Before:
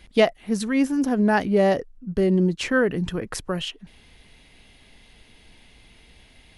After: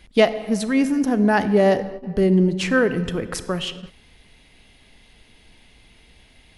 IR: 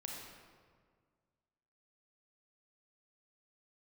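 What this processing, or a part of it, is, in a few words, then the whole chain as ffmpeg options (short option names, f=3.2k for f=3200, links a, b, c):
keyed gated reverb: -filter_complex "[0:a]asplit=3[a][b][c];[1:a]atrim=start_sample=2205[d];[b][d]afir=irnorm=-1:irlink=0[e];[c]apad=whole_len=290069[f];[e][f]sidechaingate=range=-33dB:threshold=-43dB:ratio=16:detection=peak,volume=-6dB[g];[a][g]amix=inputs=2:normalize=0"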